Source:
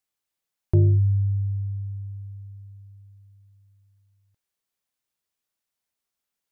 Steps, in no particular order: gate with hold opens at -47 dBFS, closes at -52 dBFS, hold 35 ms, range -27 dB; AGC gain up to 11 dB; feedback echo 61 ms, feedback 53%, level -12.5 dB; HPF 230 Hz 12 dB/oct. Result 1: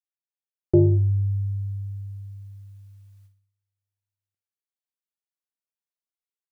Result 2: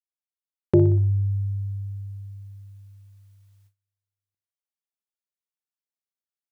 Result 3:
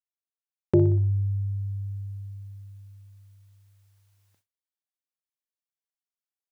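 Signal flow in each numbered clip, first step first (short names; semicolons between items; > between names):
HPF > AGC > gate with hold > feedback echo; feedback echo > gate with hold > HPF > AGC; feedback echo > AGC > gate with hold > HPF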